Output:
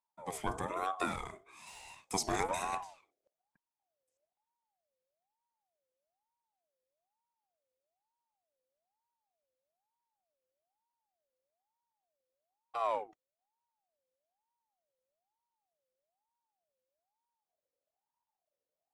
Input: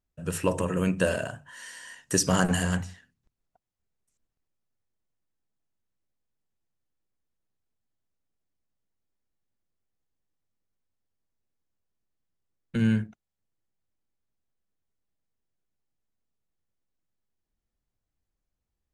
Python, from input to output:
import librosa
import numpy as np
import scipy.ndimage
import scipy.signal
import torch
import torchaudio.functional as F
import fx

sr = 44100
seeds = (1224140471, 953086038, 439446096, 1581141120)

y = fx.leveller(x, sr, passes=1, at=(1.67, 2.07))
y = fx.ring_lfo(y, sr, carrier_hz=730.0, swing_pct=30, hz=1.1)
y = y * 10.0 ** (-7.5 / 20.0)